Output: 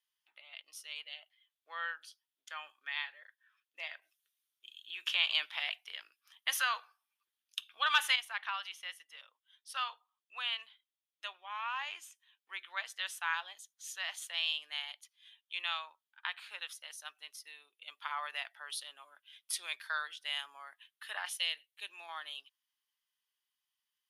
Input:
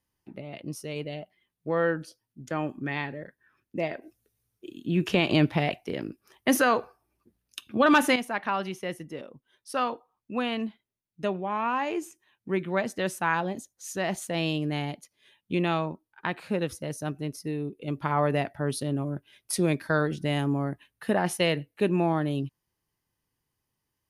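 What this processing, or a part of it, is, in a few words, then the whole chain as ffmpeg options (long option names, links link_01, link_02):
headphones lying on a table: -filter_complex "[0:a]asettb=1/sr,asplit=3[link_01][link_02][link_03];[link_01]atrim=end=21.294[link_04];[link_02]atrim=start=21.29:end=22.09,asetpts=PTS-STARTPTS,afade=type=in:duration=0.004:curve=qsin,afade=type=out:start_time=0.796:duration=0.004:curve=qsin,equalizer=frequency=1300:width_type=o:width=1.7:gain=-9.5[link_05];[link_03]atrim=start=22.086[link_06];[link_04][link_05]acrossfade=duration=0.004:curve1=hsin:curve2=qsin[link_07];[link_07][link_06]acrossfade=duration=0.004:curve1=qsin:curve2=hsin,highpass=frequency=1100:width=0.5412,highpass=frequency=1100:width=1.3066,equalizer=frequency=3300:width_type=o:width=0.49:gain=11.5,volume=-6.5dB"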